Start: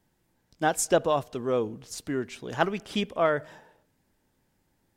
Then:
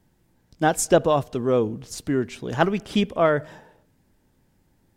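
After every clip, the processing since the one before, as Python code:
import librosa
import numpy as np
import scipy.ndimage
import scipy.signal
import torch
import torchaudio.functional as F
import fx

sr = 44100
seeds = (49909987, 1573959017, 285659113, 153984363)

y = fx.low_shelf(x, sr, hz=350.0, db=7.0)
y = F.gain(torch.from_numpy(y), 3.0).numpy()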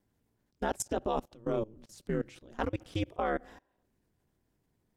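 y = fx.level_steps(x, sr, step_db=23)
y = y * np.sin(2.0 * np.pi * 110.0 * np.arange(len(y)) / sr)
y = F.gain(torch.from_numpy(y), -4.0).numpy()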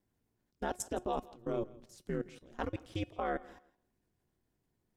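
y = fx.comb_fb(x, sr, f0_hz=360.0, decay_s=0.2, harmonics='all', damping=0.0, mix_pct=50)
y = fx.echo_feedback(y, sr, ms=165, feedback_pct=21, wet_db=-21.0)
y = F.gain(torch.from_numpy(y), 1.0).numpy()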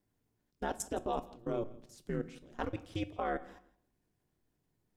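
y = fx.room_shoebox(x, sr, seeds[0], volume_m3=540.0, walls='furnished', distance_m=0.42)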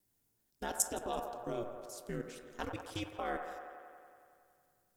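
y = fx.vibrato(x, sr, rate_hz=0.71, depth_cents=10.0)
y = scipy.signal.lfilter([1.0, -0.8], [1.0], y)
y = fx.echo_wet_bandpass(y, sr, ms=92, feedback_pct=76, hz=900.0, wet_db=-6.0)
y = F.gain(torch.from_numpy(y), 9.5).numpy()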